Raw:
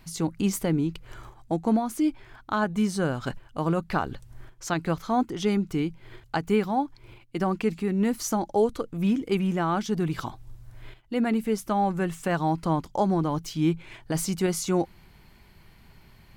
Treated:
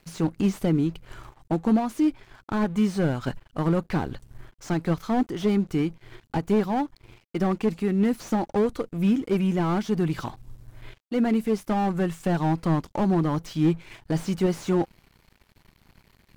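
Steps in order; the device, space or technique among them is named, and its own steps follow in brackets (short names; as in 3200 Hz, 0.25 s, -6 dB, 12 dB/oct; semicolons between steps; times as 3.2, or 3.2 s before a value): early transistor amplifier (crossover distortion -52.5 dBFS; slew limiter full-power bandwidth 36 Hz); gain +2.5 dB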